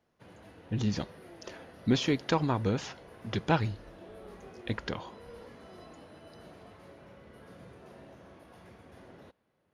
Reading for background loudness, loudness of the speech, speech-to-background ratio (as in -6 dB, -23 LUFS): -51.5 LUFS, -31.5 LUFS, 20.0 dB